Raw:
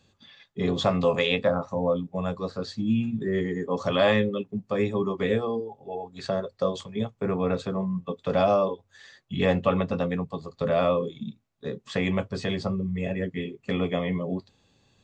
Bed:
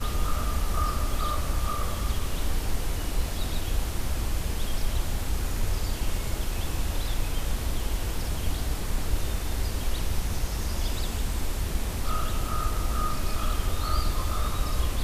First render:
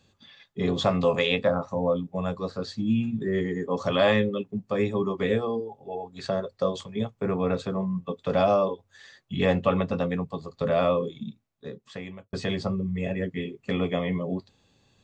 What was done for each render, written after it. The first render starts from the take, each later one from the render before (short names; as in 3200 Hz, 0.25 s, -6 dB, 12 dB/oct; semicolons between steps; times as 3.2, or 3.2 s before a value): 11.14–12.33 fade out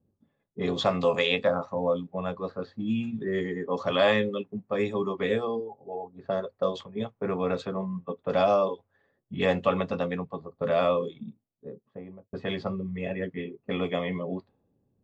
low-pass opened by the level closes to 320 Hz, open at -20.5 dBFS; low shelf 170 Hz -10 dB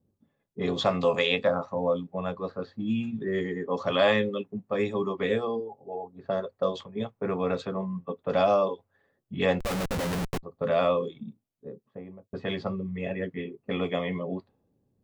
9.6–10.43 Schmitt trigger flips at -35 dBFS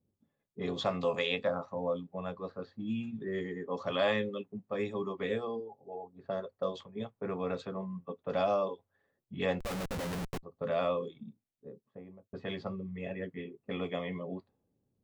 gain -7 dB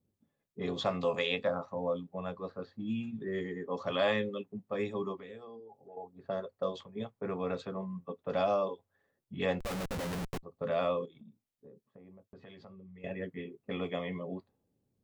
5.19–5.97 compressor 2.5:1, threshold -51 dBFS; 11.05–13.04 compressor 5:1, threshold -50 dBFS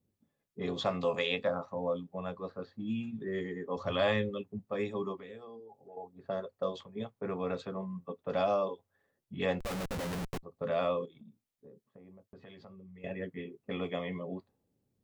3.76–4.65 bell 84 Hz +14 dB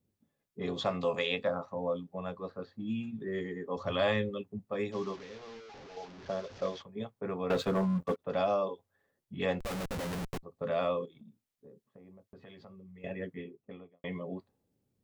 4.92–6.82 delta modulation 32 kbps, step -44 dBFS; 7.5–8.2 sample leveller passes 3; 13.25–14.04 studio fade out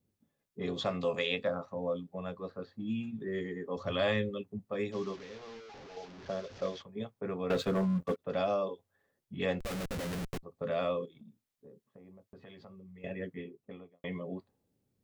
dynamic EQ 910 Hz, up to -5 dB, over -49 dBFS, Q 1.9